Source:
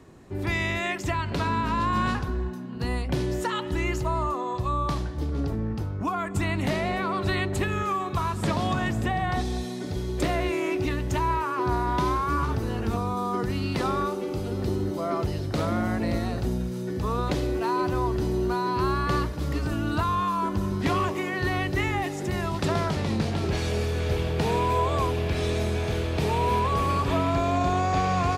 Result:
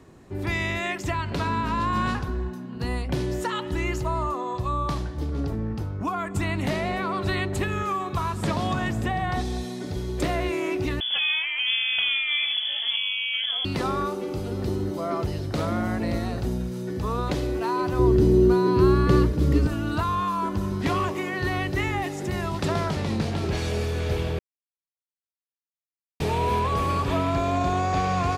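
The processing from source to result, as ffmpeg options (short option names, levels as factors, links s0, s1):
-filter_complex "[0:a]asettb=1/sr,asplit=3[s0][s1][s2];[s0]atrim=end=11.004[s3];[s1]atrim=start=11:end=13.65,asetpts=PTS-STARTPTS,afade=t=in:d=0.004:c=qsin,afade=t=out:st=2.646:d=0.004:c=qsin,lowpass=f=3000:t=q:w=0.5098,lowpass=f=3000:t=q:w=0.6013,lowpass=f=3000:t=q:w=0.9,lowpass=f=3000:t=q:w=2.563,afreqshift=-3500[s4];[s2]atrim=start=13.646[s5];[s3][s4]acrossfade=d=0.004:c1=hsin:c2=qsin[s6];[s6][s5]acrossfade=d=0.004:c1=qsin:c2=hsin,asettb=1/sr,asplit=3[s7][s8][s9];[s7]atrim=end=17.994[s10];[s8]atrim=start=17.99:end=19.67,asetpts=PTS-STARTPTS,afade=t=in:d=0.004:c=qsin,afade=t=out:st=1.676:d=0.004:c=qsin,lowshelf=f=550:t=q:w=1.5:g=7.5[s11];[s9]atrim=start=19.666[s12];[s10][s11]acrossfade=d=0.004:c1=hsin:c2=qsin[s13];[s13][s12]acrossfade=d=0.004:c1=qsin:c2=hsin,asplit=3[s14][s15][s16];[s14]atrim=end=24.39,asetpts=PTS-STARTPTS,afade=t=out:st=24.386:d=0.004:c=hsin[s17];[s15]atrim=start=24.39:end=26.2,asetpts=PTS-STARTPTS,volume=0[s18];[s16]atrim=start=26.2,asetpts=PTS-STARTPTS,afade=t=in:d=0.004:c=hsin[s19];[s17][s18][s19]concat=n=3:v=0:a=1"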